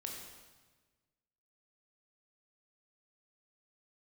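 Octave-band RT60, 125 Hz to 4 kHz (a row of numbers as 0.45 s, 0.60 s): 1.8 s, 1.5 s, 1.4 s, 1.3 s, 1.3 s, 1.2 s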